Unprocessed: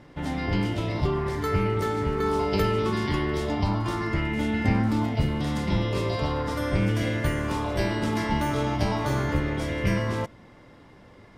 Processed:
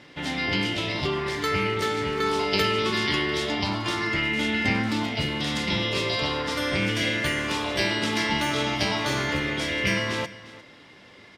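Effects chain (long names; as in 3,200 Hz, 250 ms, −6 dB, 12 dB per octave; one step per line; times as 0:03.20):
meter weighting curve D
single-tap delay 351 ms −18 dB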